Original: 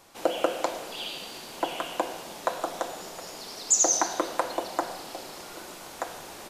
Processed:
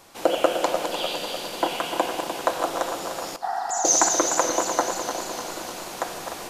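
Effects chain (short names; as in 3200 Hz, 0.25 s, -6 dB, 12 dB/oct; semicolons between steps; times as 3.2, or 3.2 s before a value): regenerating reverse delay 0.15 s, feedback 78%, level -7 dB; 3.36–3.85 level quantiser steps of 17 dB; 3.45–3.82 spectral repair 670–2000 Hz after; gain +4.5 dB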